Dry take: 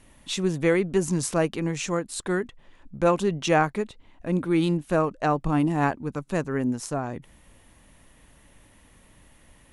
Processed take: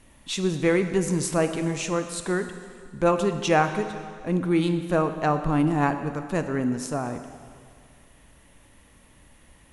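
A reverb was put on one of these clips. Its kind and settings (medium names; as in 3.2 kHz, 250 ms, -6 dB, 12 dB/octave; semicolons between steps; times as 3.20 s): plate-style reverb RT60 2.1 s, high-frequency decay 0.95×, DRR 7.5 dB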